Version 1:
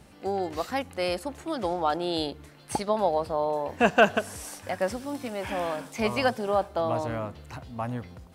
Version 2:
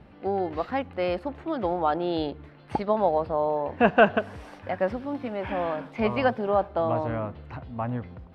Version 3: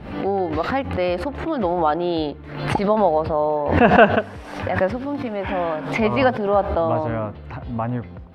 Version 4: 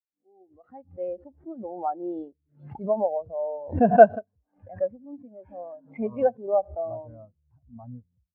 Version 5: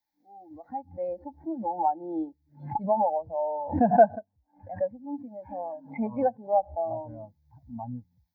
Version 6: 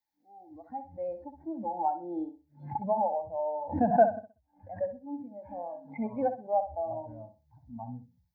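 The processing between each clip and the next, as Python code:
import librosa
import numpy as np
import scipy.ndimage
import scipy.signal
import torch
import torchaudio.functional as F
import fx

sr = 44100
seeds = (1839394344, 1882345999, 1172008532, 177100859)

y1 = fx.air_absorb(x, sr, metres=380.0)
y1 = y1 * librosa.db_to_amplitude(3.0)
y2 = fx.pre_swell(y1, sr, db_per_s=66.0)
y2 = y2 * librosa.db_to_amplitude(5.0)
y3 = fx.fade_in_head(y2, sr, length_s=1.12)
y3 = fx.quant_companded(y3, sr, bits=4)
y3 = fx.spectral_expand(y3, sr, expansion=2.5)
y3 = y3 * librosa.db_to_amplitude(-1.0)
y4 = fx.fixed_phaser(y3, sr, hz=1900.0, stages=8)
y4 = fx.small_body(y4, sr, hz=(320.0, 850.0), ring_ms=45, db=16)
y4 = fx.band_squash(y4, sr, depth_pct=40)
y5 = fx.echo_feedback(y4, sr, ms=63, feedback_pct=24, wet_db=-10.0)
y5 = y5 * librosa.db_to_amplitude(-4.0)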